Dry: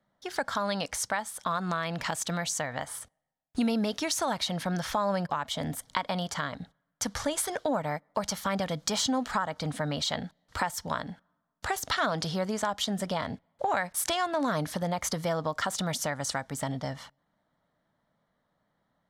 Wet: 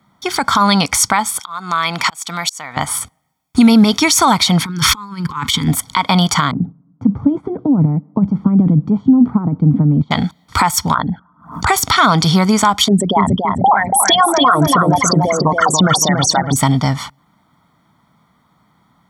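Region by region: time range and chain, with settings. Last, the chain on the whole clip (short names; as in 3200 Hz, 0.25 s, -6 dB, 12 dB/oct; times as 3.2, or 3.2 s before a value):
1.39–2.77 HPF 640 Hz 6 dB/oct + auto swell 0.487 s
4.65–5.68 negative-ratio compressor -36 dBFS, ratio -0.5 + Butterworth band-stop 660 Hz, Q 1.3
6.51–10.11 transient shaper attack +5 dB, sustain +11 dB + Butterworth band-pass 200 Hz, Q 0.81
10.94–11.67 formant sharpening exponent 2 + backwards sustainer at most 140 dB/s
12.88–16.56 formant sharpening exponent 3 + darkening echo 0.283 s, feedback 41%, low-pass 5000 Hz, level -4 dB
whole clip: HPF 65 Hz; comb 0.9 ms, depth 70%; maximiser +18.5 dB; gain -1 dB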